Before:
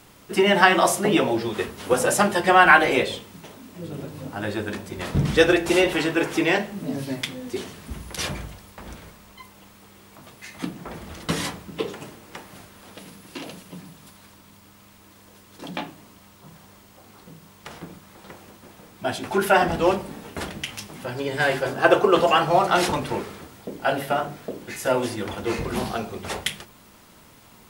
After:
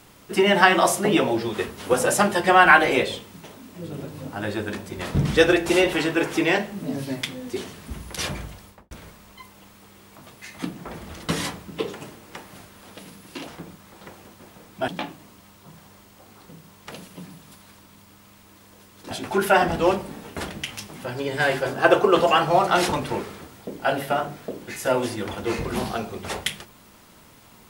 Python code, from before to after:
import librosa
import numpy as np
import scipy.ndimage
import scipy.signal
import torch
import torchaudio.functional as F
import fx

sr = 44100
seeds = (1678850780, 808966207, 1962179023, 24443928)

y = fx.studio_fade_out(x, sr, start_s=8.65, length_s=0.26)
y = fx.edit(y, sr, fx.swap(start_s=13.47, length_s=2.19, other_s=17.7, other_length_s=1.41), tone=tone)